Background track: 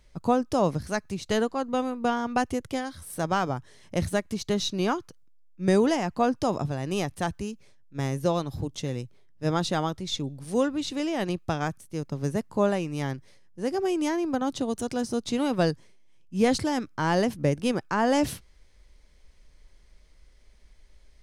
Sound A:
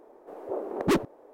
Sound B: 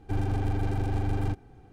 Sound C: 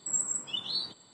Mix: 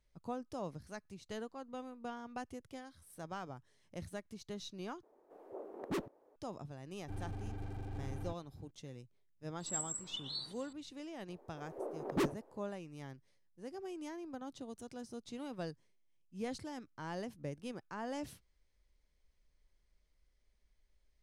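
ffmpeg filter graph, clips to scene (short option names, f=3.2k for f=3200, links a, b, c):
-filter_complex "[1:a]asplit=2[a][b];[0:a]volume=-18.5dB[c];[3:a]acompressor=mode=upward:threshold=-42dB:ratio=2.5:attack=3.2:release=140:knee=2.83:detection=peak[d];[c]asplit=2[e][f];[e]atrim=end=5.034[g];[a]atrim=end=1.33,asetpts=PTS-STARTPTS,volume=-14.5dB[h];[f]atrim=start=6.356[i];[2:a]atrim=end=1.72,asetpts=PTS-STARTPTS,volume=-15.5dB,afade=t=in:d=0.004:c=hsin,afade=t=out:st=1.716:d=0.004:c=hsin,adelay=6990[j];[d]atrim=end=1.13,asetpts=PTS-STARTPTS,volume=-9.5dB,afade=t=in:d=0.004:c=hsin,afade=t=out:st=1.126:d=0.004:c=hsin,adelay=9600[k];[b]atrim=end=1.33,asetpts=PTS-STARTPTS,volume=-9.5dB,afade=t=in:d=0.004:c=hsin,afade=t=out:st=1.326:d=0.004:c=hsin,adelay=11290[l];[g][h]acrossfade=d=0.004:c1=hsin:c2=hsin[m];[m][i]acrossfade=d=0.004:c1=hsin:c2=hsin[n];[n][j][k][l]amix=inputs=4:normalize=0"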